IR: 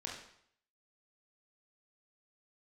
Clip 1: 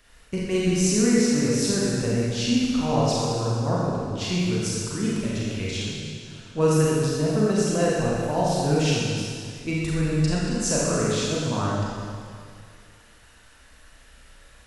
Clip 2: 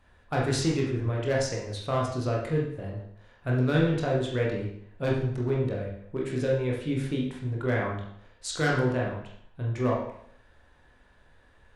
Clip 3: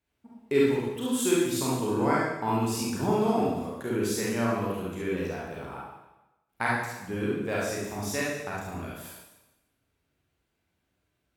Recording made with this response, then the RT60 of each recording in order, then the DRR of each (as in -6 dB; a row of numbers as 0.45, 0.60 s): 2; 2.2, 0.65, 1.0 s; -6.0, -3.0, -6.5 dB